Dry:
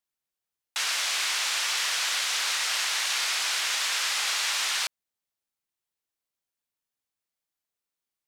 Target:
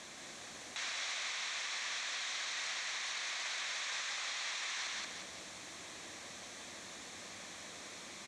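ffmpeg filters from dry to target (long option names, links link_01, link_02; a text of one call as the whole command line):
ffmpeg -i in.wav -af "aeval=exprs='val(0)+0.5*0.0158*sgn(val(0))':channel_layout=same,acompressor=threshold=-32dB:ratio=6,aecho=1:1:178|356|534|712|890:0.631|0.265|0.111|0.0467|0.0196,alimiter=level_in=4dB:limit=-24dB:level=0:latency=1:release=22,volume=-4dB,highpass=100,equalizer=frequency=130:width_type=q:width=4:gain=-9,equalizer=frequency=420:width_type=q:width=4:gain=-5,equalizer=frequency=880:width_type=q:width=4:gain=-6,equalizer=frequency=1400:width_type=q:width=4:gain=-7,equalizer=frequency=2900:width_type=q:width=4:gain=-9,equalizer=frequency=4900:width_type=q:width=4:gain=-10,lowpass=frequency=6300:width=0.5412,lowpass=frequency=6300:width=1.3066,volume=2dB" out.wav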